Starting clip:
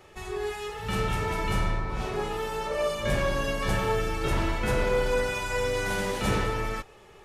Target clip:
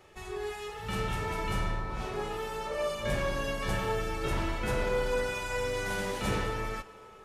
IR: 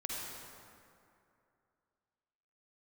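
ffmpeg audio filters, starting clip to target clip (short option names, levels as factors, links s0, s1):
-filter_complex "[0:a]asplit=2[s0][s1];[s1]highpass=f=350:p=1[s2];[1:a]atrim=start_sample=2205,asetrate=32193,aresample=44100[s3];[s2][s3]afir=irnorm=-1:irlink=0,volume=0.126[s4];[s0][s4]amix=inputs=2:normalize=0,volume=0.562"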